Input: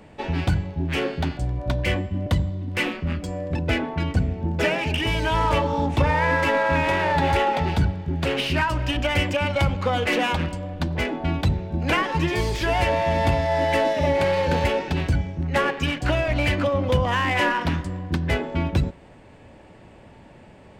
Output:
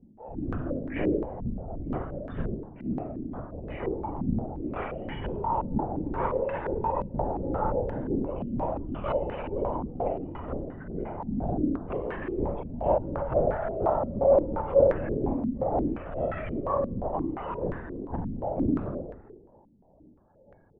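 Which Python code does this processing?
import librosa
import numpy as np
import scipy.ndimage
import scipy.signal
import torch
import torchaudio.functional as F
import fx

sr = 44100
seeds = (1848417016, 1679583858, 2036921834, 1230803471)

p1 = fx.cheby_harmonics(x, sr, harmonics=(7, 8), levels_db=(-27, -20), full_scale_db=-6.5)
p2 = fx.spec_topn(p1, sr, count=32)
p3 = (np.mod(10.0 ** (13.0 / 20.0) * p2 + 1.0, 2.0) - 1.0) / 10.0 ** (13.0 / 20.0)
p4 = p2 + (p3 * librosa.db_to_amplitude(-12.0))
p5 = fx.env_flanger(p4, sr, rest_ms=7.1, full_db=-20.0)
p6 = fx.transient(p5, sr, attack_db=-4, sustain_db=11)
p7 = fx.chopper(p6, sr, hz=2.1, depth_pct=65, duty_pct=15)
p8 = fx.clip_asym(p7, sr, top_db=-31.0, bottom_db=-13.5)
p9 = p8 + fx.room_flutter(p8, sr, wall_m=8.0, rt60_s=0.63, dry=0)
p10 = fx.rev_fdn(p9, sr, rt60_s=1.3, lf_ratio=0.95, hf_ratio=0.6, size_ms=11.0, drr_db=3.0)
p11 = fx.lpc_vocoder(p10, sr, seeds[0], excitation='whisper', order=16)
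p12 = fx.filter_held_lowpass(p11, sr, hz=5.7, low_hz=230.0, high_hz=1700.0)
y = p12 * librosa.db_to_amplitude(-7.5)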